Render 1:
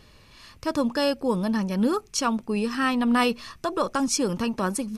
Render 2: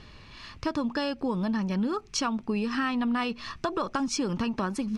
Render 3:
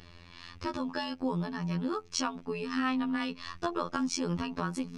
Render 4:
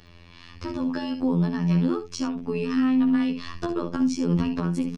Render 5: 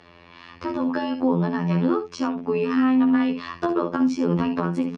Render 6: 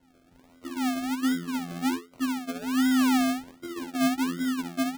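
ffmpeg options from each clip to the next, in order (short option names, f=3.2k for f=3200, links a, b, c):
-af "lowpass=4.7k,equalizer=f=520:t=o:w=0.54:g=-5.5,acompressor=threshold=-30dB:ratio=6,volume=4.5dB"
-af "afftfilt=real='hypot(re,im)*cos(PI*b)':imag='0':win_size=2048:overlap=0.75"
-filter_complex "[0:a]acrossover=split=400[a][b];[b]acompressor=threshold=-44dB:ratio=4[c];[a][c]amix=inputs=2:normalize=0,aecho=1:1:58|70:0.251|0.282,dynaudnorm=f=450:g=3:m=8.5dB"
-af "bandpass=f=830:t=q:w=0.58:csg=0,volume=8dB"
-filter_complex "[0:a]asplit=3[a][b][c];[a]bandpass=f=270:t=q:w=8,volume=0dB[d];[b]bandpass=f=2.29k:t=q:w=8,volume=-6dB[e];[c]bandpass=f=3.01k:t=q:w=8,volume=-9dB[f];[d][e][f]amix=inputs=3:normalize=0,acrusher=samples=36:mix=1:aa=0.000001:lfo=1:lforange=21.6:lforate=1.3,asoftclip=type=tanh:threshold=-17dB"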